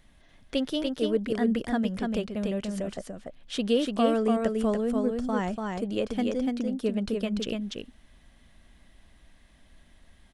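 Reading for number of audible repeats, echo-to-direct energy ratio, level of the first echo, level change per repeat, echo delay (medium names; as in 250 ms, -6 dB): 1, -3.5 dB, -3.5 dB, no regular repeats, 291 ms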